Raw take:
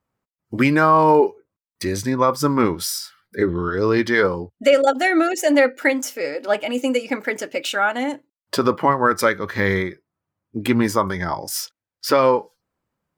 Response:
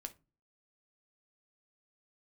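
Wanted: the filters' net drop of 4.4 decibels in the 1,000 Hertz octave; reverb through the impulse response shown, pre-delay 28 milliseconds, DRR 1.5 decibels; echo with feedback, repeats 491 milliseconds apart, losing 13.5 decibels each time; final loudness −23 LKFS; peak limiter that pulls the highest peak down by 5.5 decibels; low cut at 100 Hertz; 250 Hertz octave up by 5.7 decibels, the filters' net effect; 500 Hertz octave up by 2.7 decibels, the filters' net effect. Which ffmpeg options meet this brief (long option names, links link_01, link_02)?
-filter_complex "[0:a]highpass=100,equalizer=frequency=250:width_type=o:gain=6.5,equalizer=frequency=500:width_type=o:gain=3,equalizer=frequency=1000:width_type=o:gain=-6.5,alimiter=limit=-7dB:level=0:latency=1,aecho=1:1:491|982:0.211|0.0444,asplit=2[link_01][link_02];[1:a]atrim=start_sample=2205,adelay=28[link_03];[link_02][link_03]afir=irnorm=-1:irlink=0,volume=2.5dB[link_04];[link_01][link_04]amix=inputs=2:normalize=0,volume=-6.5dB"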